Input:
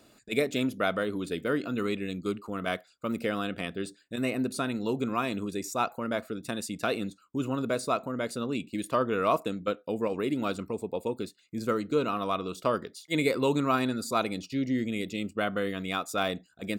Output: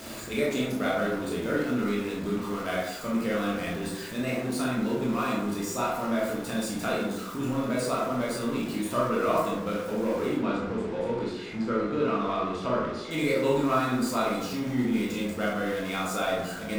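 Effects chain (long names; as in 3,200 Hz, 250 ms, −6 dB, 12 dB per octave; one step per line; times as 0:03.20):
converter with a step at zero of −32 dBFS
0:10.34–0:13.11: low-pass filter 3,900 Hz 12 dB per octave
convolution reverb RT60 1.0 s, pre-delay 13 ms, DRR −5 dB
level −7 dB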